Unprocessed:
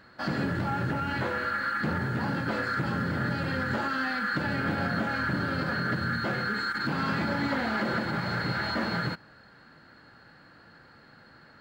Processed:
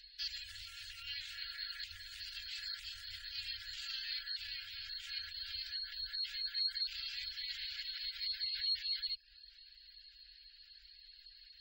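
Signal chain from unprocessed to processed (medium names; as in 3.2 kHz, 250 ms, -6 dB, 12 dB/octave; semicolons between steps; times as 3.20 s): hum notches 60/120/180/240/300/360/420/480 Hz; peak limiter -27 dBFS, peak gain reduction 9 dB; inverse Chebyshev band-stop 130–1000 Hz, stop band 60 dB; spectral gate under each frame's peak -25 dB strong; reverb removal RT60 0.5 s; trim +9 dB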